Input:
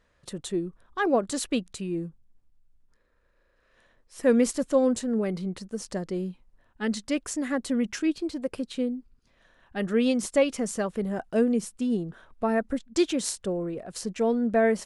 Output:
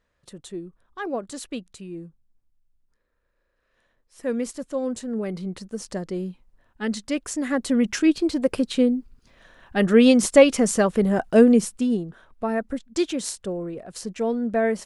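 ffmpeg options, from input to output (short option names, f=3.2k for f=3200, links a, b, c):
-af "volume=9dB,afade=t=in:st=4.76:d=0.84:silence=0.446684,afade=t=in:st=7.25:d=1.18:silence=0.421697,afade=t=out:st=11.53:d=0.54:silence=0.354813"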